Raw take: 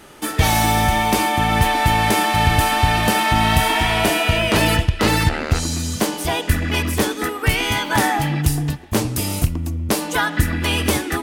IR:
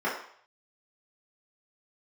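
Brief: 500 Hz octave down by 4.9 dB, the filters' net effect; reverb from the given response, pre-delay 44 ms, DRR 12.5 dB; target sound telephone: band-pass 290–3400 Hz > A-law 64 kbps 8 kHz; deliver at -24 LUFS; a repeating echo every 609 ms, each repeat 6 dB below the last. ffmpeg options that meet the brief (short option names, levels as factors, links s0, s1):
-filter_complex "[0:a]equalizer=f=500:t=o:g=-6,aecho=1:1:609|1218|1827|2436|3045|3654:0.501|0.251|0.125|0.0626|0.0313|0.0157,asplit=2[s0][s1];[1:a]atrim=start_sample=2205,adelay=44[s2];[s1][s2]afir=irnorm=-1:irlink=0,volume=0.0596[s3];[s0][s3]amix=inputs=2:normalize=0,highpass=290,lowpass=3400,volume=0.668" -ar 8000 -c:a pcm_alaw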